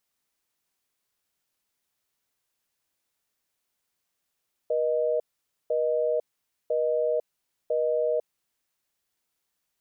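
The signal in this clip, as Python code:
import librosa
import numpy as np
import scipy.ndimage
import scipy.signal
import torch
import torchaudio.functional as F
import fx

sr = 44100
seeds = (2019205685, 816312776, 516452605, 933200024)

y = fx.call_progress(sr, length_s=3.9, kind='busy tone', level_db=-25.0)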